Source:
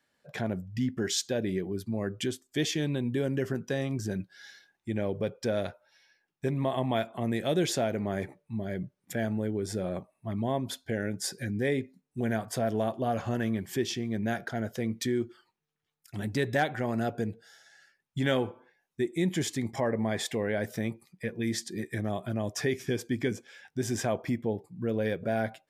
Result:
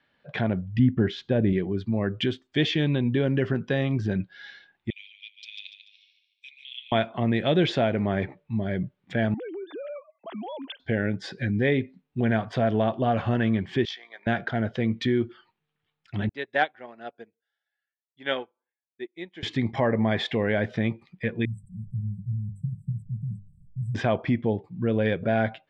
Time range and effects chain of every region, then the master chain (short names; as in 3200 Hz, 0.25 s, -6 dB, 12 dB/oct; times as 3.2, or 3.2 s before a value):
0.79–1.53 LPF 1300 Hz 6 dB/oct + low shelf 200 Hz +7.5 dB
4.9–6.92 steep high-pass 2400 Hz 72 dB/oct + feedback echo 0.145 s, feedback 43%, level -8.5 dB
9.34–10.8 sine-wave speech + HPF 390 Hz + compressor, threshold -38 dBFS
13.85–14.27 HPF 760 Hz 24 dB/oct + bell 2700 Hz -12.5 dB 0.26 oct + AM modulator 55 Hz, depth 30%
16.29–19.43 HPF 390 Hz + upward expander 2.5:1, over -46 dBFS
21.45–23.95 level-crossing sampler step -45 dBFS + brick-wall FIR band-stop 200–7600 Hz + notches 50/100/150/200 Hz
whole clip: Chebyshev low-pass 3400 Hz, order 3; bell 430 Hz -3.5 dB 1.9 oct; gain +8 dB